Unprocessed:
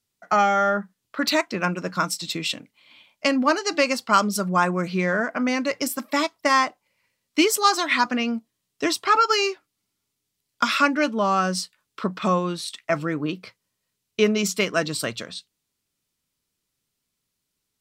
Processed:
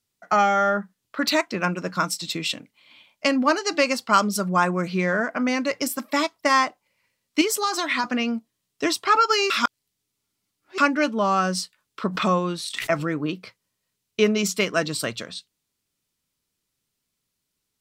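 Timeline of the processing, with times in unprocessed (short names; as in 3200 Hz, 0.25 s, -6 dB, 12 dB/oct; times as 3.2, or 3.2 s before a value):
7.41–8.04 compressor, threshold -19 dBFS
9.5–10.78 reverse
12.08–13.12 backwards sustainer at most 81 dB/s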